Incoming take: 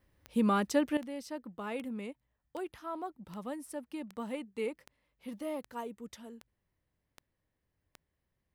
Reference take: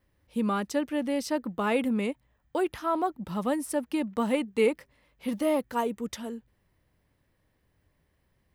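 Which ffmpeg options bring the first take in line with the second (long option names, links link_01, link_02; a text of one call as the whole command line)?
ffmpeg -i in.wav -af "adeclick=threshold=4,asetnsamples=nb_out_samples=441:pad=0,asendcmd='0.97 volume volume 12dB',volume=0dB" out.wav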